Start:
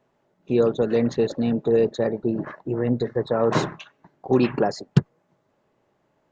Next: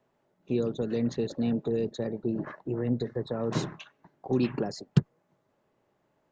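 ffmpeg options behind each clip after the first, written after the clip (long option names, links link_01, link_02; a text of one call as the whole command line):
ffmpeg -i in.wav -filter_complex "[0:a]acrossover=split=340|3000[link_01][link_02][link_03];[link_02]acompressor=threshold=-30dB:ratio=6[link_04];[link_01][link_04][link_03]amix=inputs=3:normalize=0,volume=-4.5dB" out.wav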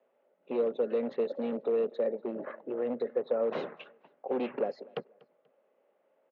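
ffmpeg -i in.wav -af "asoftclip=type=hard:threshold=-23.5dB,highpass=frequency=270:width=0.5412,highpass=frequency=270:width=1.3066,equalizer=frequency=320:width_type=q:width=4:gain=-9,equalizer=frequency=530:width_type=q:width=4:gain=10,equalizer=frequency=990:width_type=q:width=4:gain=-5,equalizer=frequency=1700:width_type=q:width=4:gain=-4,lowpass=frequency=2900:width=0.5412,lowpass=frequency=2900:width=1.3066,aecho=1:1:242|484:0.0631|0.0208" out.wav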